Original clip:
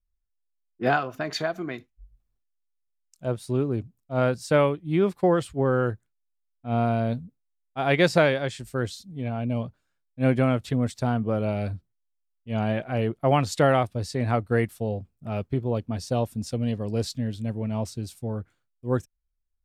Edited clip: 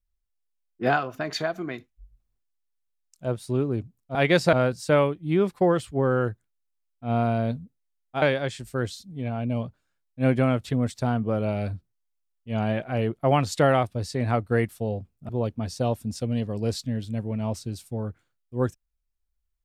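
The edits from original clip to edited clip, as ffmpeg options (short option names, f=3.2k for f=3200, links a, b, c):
-filter_complex "[0:a]asplit=5[a][b][c][d][e];[a]atrim=end=4.152[f];[b]atrim=start=7.838:end=8.222[g];[c]atrim=start=4.148:end=7.842[h];[d]atrim=start=8.218:end=15.292[i];[e]atrim=start=15.598[j];[f][g]acrossfade=d=0.004:c1=hsin:c2=hsin[k];[k][h]acrossfade=d=0.004:c1=hsin:c2=hsin[l];[l][i]acrossfade=d=0.004:c1=hsin:c2=hsin[m];[m][j]acrossfade=d=0.004:c1=hsin:c2=hsin"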